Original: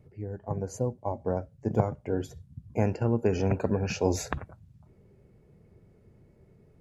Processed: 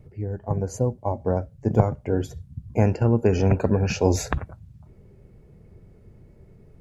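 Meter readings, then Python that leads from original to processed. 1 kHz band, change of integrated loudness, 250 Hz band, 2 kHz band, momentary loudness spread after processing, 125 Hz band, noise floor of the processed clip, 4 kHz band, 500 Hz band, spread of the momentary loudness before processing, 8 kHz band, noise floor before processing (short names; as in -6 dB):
+5.0 dB, +6.0 dB, +6.0 dB, +5.0 dB, 11 LU, +8.0 dB, -52 dBFS, +5.0 dB, +5.0 dB, 12 LU, +5.0 dB, -60 dBFS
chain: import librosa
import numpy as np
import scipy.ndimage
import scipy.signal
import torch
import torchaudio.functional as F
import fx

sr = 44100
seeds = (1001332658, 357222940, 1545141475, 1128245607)

y = fx.low_shelf(x, sr, hz=61.0, db=11.5)
y = y * librosa.db_to_amplitude(5.0)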